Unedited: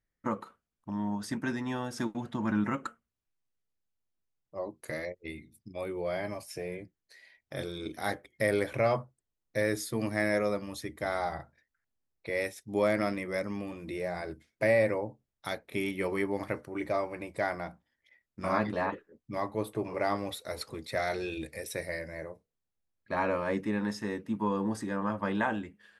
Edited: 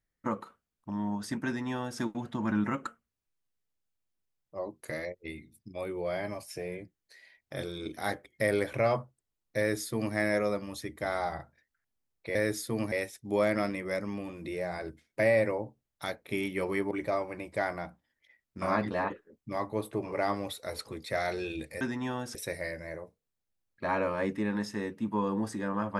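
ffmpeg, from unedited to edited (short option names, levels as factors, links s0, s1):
-filter_complex "[0:a]asplit=6[s0][s1][s2][s3][s4][s5];[s0]atrim=end=12.352[s6];[s1]atrim=start=9.578:end=10.152[s7];[s2]atrim=start=12.348:end=16.342[s8];[s3]atrim=start=16.728:end=21.632[s9];[s4]atrim=start=1.458:end=2.002[s10];[s5]atrim=start=21.628[s11];[s6][s7]acrossfade=d=0.004:c1=hsin:c2=hsin[s12];[s12][s8]acrossfade=d=0.004:c1=hsin:c2=hsin[s13];[s13][s9]acrossfade=d=0.004:c1=hsin:c2=hsin[s14];[s14][s10]acrossfade=d=0.004:c1=hsin:c2=hsin[s15];[s15][s11]acrossfade=d=0.004:c1=hsin:c2=hsin"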